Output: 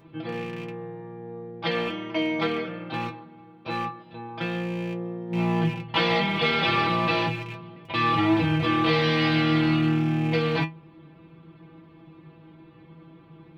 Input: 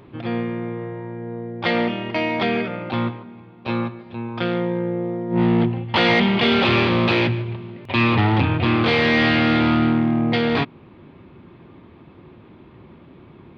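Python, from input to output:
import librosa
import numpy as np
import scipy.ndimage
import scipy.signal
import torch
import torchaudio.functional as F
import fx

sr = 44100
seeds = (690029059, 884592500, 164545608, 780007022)

y = fx.rattle_buzz(x, sr, strikes_db=-24.0, level_db=-21.0)
y = fx.stiff_resonator(y, sr, f0_hz=160.0, decay_s=0.22, stiffness=0.002)
y = y * librosa.db_to_amplitude(6.0)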